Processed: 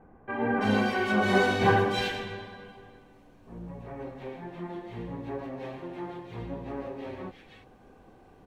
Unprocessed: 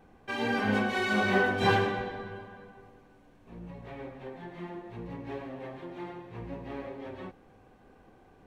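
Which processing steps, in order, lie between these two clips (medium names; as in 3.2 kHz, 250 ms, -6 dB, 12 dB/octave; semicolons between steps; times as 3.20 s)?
bands offset in time lows, highs 330 ms, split 1.9 kHz; trim +3 dB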